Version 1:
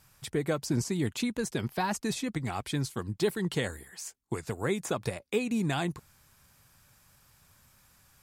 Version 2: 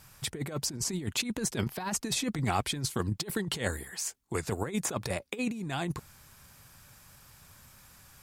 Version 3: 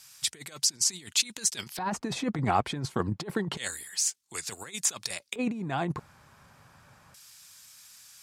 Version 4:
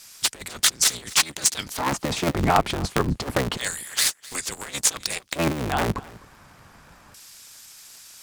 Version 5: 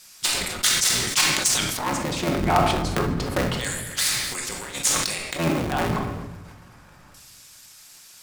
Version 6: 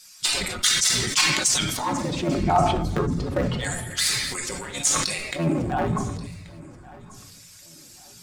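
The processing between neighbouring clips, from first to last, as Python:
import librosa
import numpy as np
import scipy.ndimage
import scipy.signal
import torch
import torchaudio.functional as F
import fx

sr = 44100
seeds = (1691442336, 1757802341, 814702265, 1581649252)

y1 = fx.over_compress(x, sr, threshold_db=-33.0, ratio=-0.5)
y1 = F.gain(torch.from_numpy(y1), 2.5).numpy()
y2 = fx.bass_treble(y1, sr, bass_db=10, treble_db=4)
y2 = fx.filter_lfo_bandpass(y2, sr, shape='square', hz=0.28, low_hz=820.0, high_hz=5100.0, q=0.78)
y2 = F.gain(torch.from_numpy(y2), 5.5).numpy()
y3 = fx.cycle_switch(y2, sr, every=3, mode='inverted')
y3 = y3 + 10.0 ** (-21.0 / 20.0) * np.pad(y3, (int(257 * sr / 1000.0), 0))[:len(y3)]
y3 = F.gain(torch.from_numpy(y3), 6.5).numpy()
y4 = fx.room_shoebox(y3, sr, seeds[0], volume_m3=580.0, walls='mixed', distance_m=0.96)
y4 = fx.sustainer(y4, sr, db_per_s=36.0)
y4 = F.gain(torch.from_numpy(y4), -3.0).numpy()
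y5 = fx.spec_expand(y4, sr, power=1.6)
y5 = fx.echo_feedback(y5, sr, ms=1132, feedback_pct=32, wet_db=-21.0)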